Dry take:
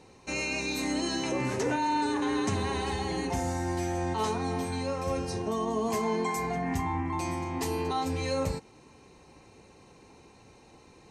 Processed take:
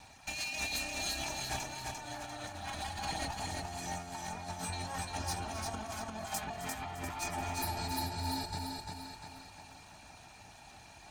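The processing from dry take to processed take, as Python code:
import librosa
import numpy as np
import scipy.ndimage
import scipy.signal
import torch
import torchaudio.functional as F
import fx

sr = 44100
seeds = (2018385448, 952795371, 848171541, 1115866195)

p1 = fx.lower_of_two(x, sr, delay_ms=1.2)
p2 = fx.dereverb_blind(p1, sr, rt60_s=0.56)
p3 = fx.spec_repair(p2, sr, seeds[0], start_s=7.58, length_s=0.91, low_hz=490.0, high_hz=9200.0, source='after')
p4 = fx.over_compress(p3, sr, threshold_db=-37.0, ratio=-0.5)
p5 = fx.peak_eq(p4, sr, hz=210.0, db=-10.5, octaves=2.7)
p6 = fx.notch_comb(p5, sr, f0_hz=520.0)
p7 = p6 + fx.echo_feedback(p6, sr, ms=347, feedback_pct=45, wet_db=-3.5, dry=0)
p8 = fx.dynamic_eq(p7, sr, hz=1700.0, q=0.75, threshold_db=-51.0, ratio=4.0, max_db=-4)
p9 = p8 + 10.0 ** (-13.5 / 20.0) * np.pad(p8, (int(264 * sr / 1000.0), 0))[:len(p8)]
y = F.gain(torch.from_numpy(p9), 3.0).numpy()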